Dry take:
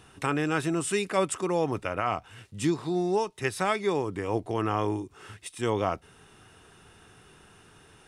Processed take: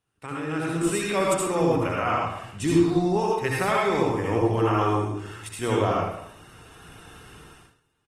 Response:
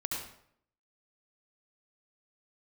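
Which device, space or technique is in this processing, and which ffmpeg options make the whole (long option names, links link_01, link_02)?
speakerphone in a meeting room: -filter_complex "[0:a]asettb=1/sr,asplit=3[link_01][link_02][link_03];[link_01]atrim=end=3.114[link_04];[link_02]atrim=start=3.11:end=3.85,asetpts=PTS-STARTPTS,afade=type=in:duration=0.004:curve=qsin,afade=type=out:start_time=0.736:duration=0.004:curve=qsin,equalizer=frequency=7300:width=0.53:gain=-3[link_05];[link_03]atrim=start=3.846[link_06];[link_04][link_05]acrossfade=duration=0.004:curve1=hsin:curve2=qsin[link_07];[link_07][link_06]acrossfade=duration=0.004:curve1=qsin:curve2=hsin[link_08];[1:a]atrim=start_sample=2205[link_09];[link_08][link_09]afir=irnorm=-1:irlink=0,asplit=2[link_10][link_11];[link_11]adelay=150,highpass=300,lowpass=3400,asoftclip=type=hard:threshold=-18.5dB,volume=-13dB[link_12];[link_10][link_12]amix=inputs=2:normalize=0,dynaudnorm=framelen=120:gausssize=13:maxgain=13.5dB,agate=range=-16dB:threshold=-42dB:ratio=16:detection=peak,volume=-8dB" -ar 48000 -c:a libopus -b:a 24k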